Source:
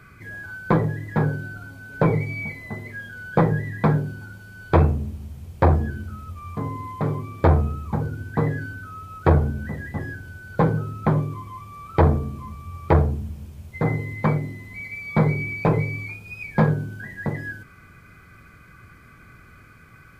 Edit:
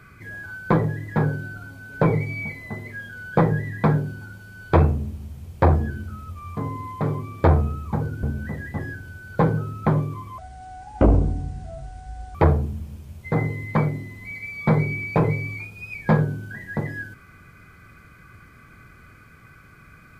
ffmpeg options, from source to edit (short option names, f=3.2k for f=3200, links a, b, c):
-filter_complex "[0:a]asplit=4[a][b][c][d];[a]atrim=end=8.232[e];[b]atrim=start=9.428:end=11.584[f];[c]atrim=start=11.58:end=12.84,asetpts=PTS-STARTPTS,asetrate=28224,aresample=44100[g];[d]atrim=start=12.836[h];[e][f]acrossfade=d=0.004:c1=hsin:c2=hsin[i];[i][g]acrossfade=d=0.004:c1=hsin:c2=hsin[j];[j][h]acrossfade=d=0.004:c1=hsin:c2=hsin"